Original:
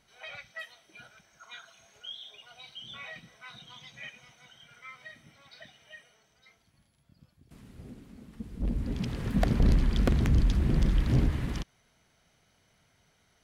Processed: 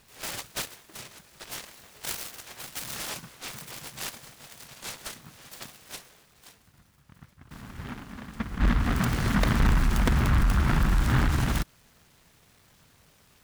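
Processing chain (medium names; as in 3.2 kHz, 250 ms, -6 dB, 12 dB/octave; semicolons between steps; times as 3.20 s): peak limiter -24.5 dBFS, peak gain reduction 7.5 dB; delay time shaken by noise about 1.2 kHz, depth 0.36 ms; trim +8 dB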